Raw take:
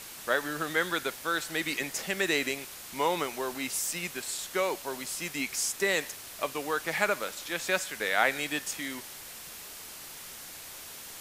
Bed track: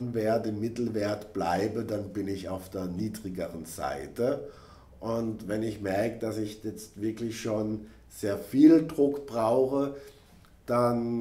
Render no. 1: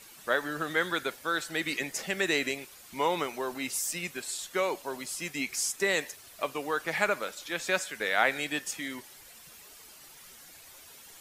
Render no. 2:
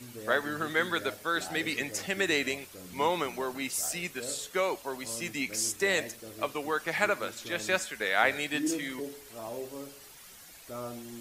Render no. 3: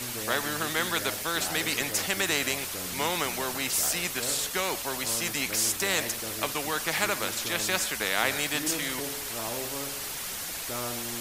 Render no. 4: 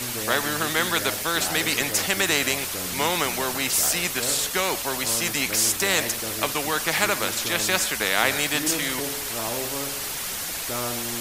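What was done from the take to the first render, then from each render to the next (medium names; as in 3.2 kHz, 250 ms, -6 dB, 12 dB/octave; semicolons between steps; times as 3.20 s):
noise reduction 10 dB, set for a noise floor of -45 dBFS
add bed track -14.5 dB
spectrum-flattening compressor 2:1
trim +5 dB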